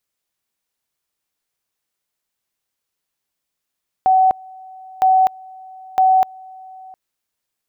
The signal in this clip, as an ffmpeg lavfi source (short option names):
-f lavfi -i "aevalsrc='pow(10,(-9.5-25.5*gte(mod(t,0.96),0.25))/20)*sin(2*PI*754*t)':d=2.88:s=44100"